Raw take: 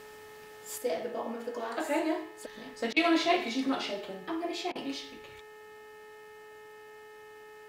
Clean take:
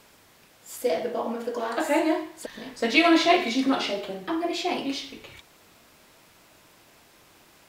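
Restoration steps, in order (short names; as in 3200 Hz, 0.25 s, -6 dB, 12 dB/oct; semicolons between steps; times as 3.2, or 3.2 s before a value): de-hum 427.1 Hz, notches 7; notch 1800 Hz, Q 30; interpolate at 2.93/4.72, 33 ms; gain 0 dB, from 0.78 s +7 dB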